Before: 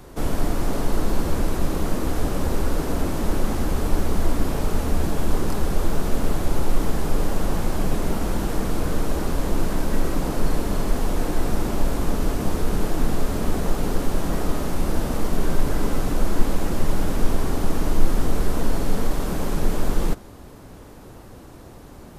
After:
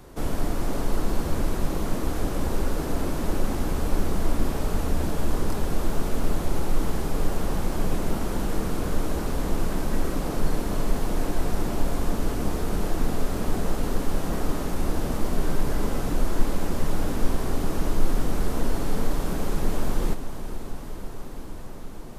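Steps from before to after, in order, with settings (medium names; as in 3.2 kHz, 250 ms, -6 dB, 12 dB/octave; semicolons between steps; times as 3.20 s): echo that smears into a reverb 504 ms, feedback 77%, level -12 dB; trim -3.5 dB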